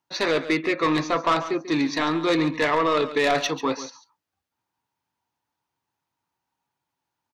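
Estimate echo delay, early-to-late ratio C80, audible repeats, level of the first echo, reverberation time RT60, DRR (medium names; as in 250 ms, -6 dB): 140 ms, no reverb, 1, -13.5 dB, no reverb, no reverb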